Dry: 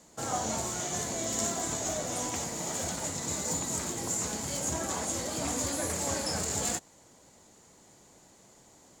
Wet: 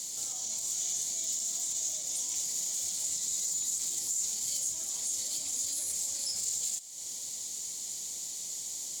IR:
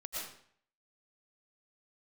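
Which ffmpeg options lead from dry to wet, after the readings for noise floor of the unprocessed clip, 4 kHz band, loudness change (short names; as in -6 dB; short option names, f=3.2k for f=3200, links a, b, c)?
-59 dBFS, +1.0 dB, 0.0 dB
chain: -filter_complex "[0:a]equalizer=f=2.7k:w=3.9:g=-6,acompressor=threshold=-45dB:ratio=10,alimiter=level_in=20dB:limit=-24dB:level=0:latency=1:release=83,volume=-20dB,aexciter=amount=11.5:drive=5.9:freq=2.4k,asplit=2[a][b];[1:a]atrim=start_sample=2205[c];[b][c]afir=irnorm=-1:irlink=0,volume=-15.5dB[d];[a][d]amix=inputs=2:normalize=0,volume=-3dB"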